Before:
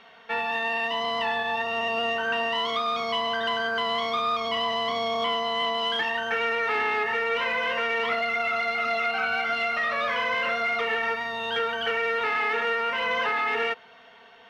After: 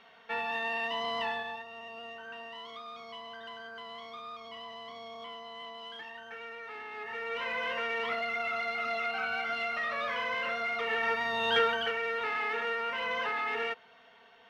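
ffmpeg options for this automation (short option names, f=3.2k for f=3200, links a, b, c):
-af "volume=13.5dB,afade=t=out:st=1.24:d=0.41:silence=0.251189,afade=t=in:st=6.9:d=0.7:silence=0.281838,afade=t=in:st=10.79:d=0.79:silence=0.375837,afade=t=out:st=11.58:d=0.35:silence=0.375837"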